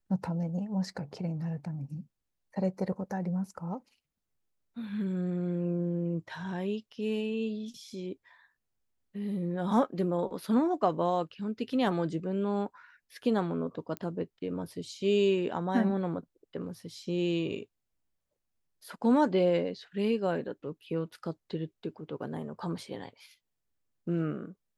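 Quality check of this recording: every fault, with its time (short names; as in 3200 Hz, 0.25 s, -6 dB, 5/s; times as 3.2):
13.97 pop -22 dBFS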